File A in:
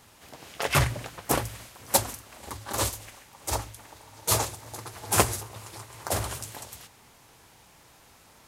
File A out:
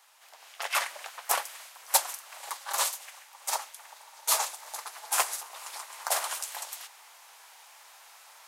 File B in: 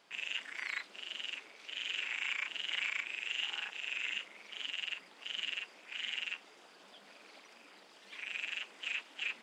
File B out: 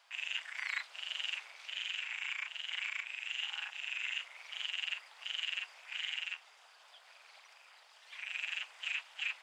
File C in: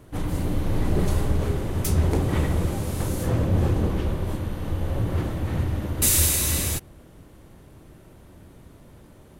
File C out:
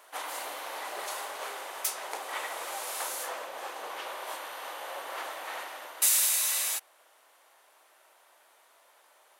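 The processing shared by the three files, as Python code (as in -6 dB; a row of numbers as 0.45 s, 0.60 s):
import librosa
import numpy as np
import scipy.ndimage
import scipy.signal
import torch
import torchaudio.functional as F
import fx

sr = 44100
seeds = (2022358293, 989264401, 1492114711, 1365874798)

y = fx.rider(x, sr, range_db=4, speed_s=0.5)
y = np.clip(y, -10.0 ** (-7.0 / 20.0), 10.0 ** (-7.0 / 20.0))
y = scipy.signal.sosfilt(scipy.signal.butter(4, 710.0, 'highpass', fs=sr, output='sos'), y)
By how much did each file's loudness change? -2.5 LU, -0.5 LU, -7.0 LU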